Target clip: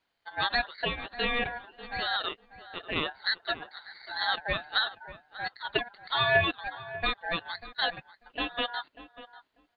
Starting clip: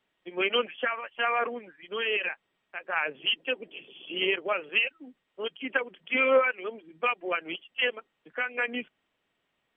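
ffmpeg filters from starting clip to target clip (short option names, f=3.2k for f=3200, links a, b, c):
-filter_complex "[0:a]aeval=exprs='val(0)*sin(2*PI*1200*n/s)':c=same,asplit=2[a][b];[b]adelay=592,lowpass=f=1.6k:p=1,volume=-14dB,asplit=2[c][d];[d]adelay=592,lowpass=f=1.6k:p=1,volume=0.16[e];[a][c][e]amix=inputs=3:normalize=0,volume=1dB"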